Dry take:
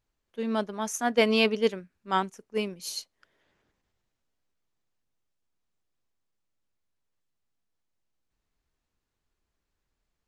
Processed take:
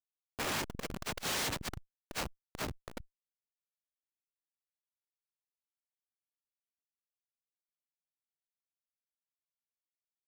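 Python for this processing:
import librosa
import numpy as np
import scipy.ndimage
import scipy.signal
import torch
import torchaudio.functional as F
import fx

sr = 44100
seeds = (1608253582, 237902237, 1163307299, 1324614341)

y = fx.noise_vocoder(x, sr, seeds[0], bands=1)
y = fx.schmitt(y, sr, flips_db=-28.0)
y = fx.transformer_sat(y, sr, knee_hz=190.0)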